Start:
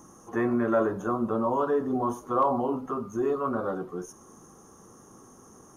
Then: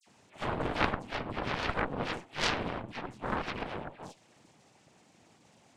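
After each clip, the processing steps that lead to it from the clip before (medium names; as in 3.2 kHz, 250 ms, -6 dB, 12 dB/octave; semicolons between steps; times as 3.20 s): noise-vocoded speech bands 4; phase dispersion lows, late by 63 ms, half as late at 2.2 kHz; Chebyshev shaper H 3 -7 dB, 4 -13 dB, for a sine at -10 dBFS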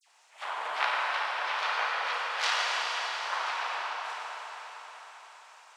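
high-pass 760 Hz 24 dB/octave; reverberation RT60 5.0 s, pre-delay 33 ms, DRR -5 dB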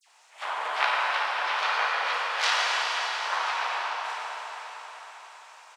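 doubling 16 ms -11.5 dB; trim +3.5 dB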